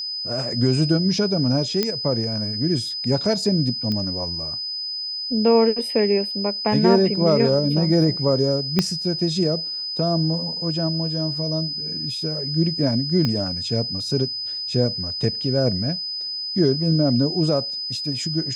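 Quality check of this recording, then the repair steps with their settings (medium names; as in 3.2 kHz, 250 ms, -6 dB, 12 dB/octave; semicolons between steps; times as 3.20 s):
whine 5 kHz -26 dBFS
1.83 s: pop -7 dBFS
3.92 s: pop -14 dBFS
8.79 s: pop -5 dBFS
13.25 s: pop -11 dBFS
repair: de-click; band-stop 5 kHz, Q 30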